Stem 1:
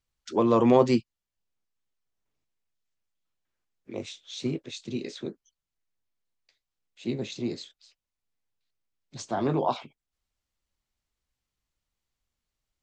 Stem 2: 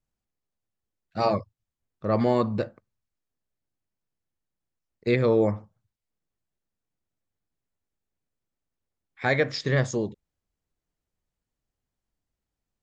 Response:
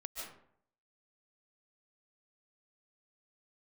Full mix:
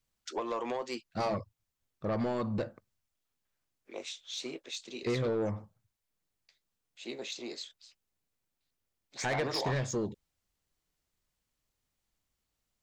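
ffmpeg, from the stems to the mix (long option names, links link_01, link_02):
-filter_complex "[0:a]highpass=560,acompressor=threshold=-29dB:ratio=6,volume=-0.5dB[link_01];[1:a]acompressor=threshold=-24dB:ratio=4,volume=-1dB[link_02];[link_01][link_02]amix=inputs=2:normalize=0,highshelf=frequency=7000:gain=4,asoftclip=type=tanh:threshold=-25.5dB"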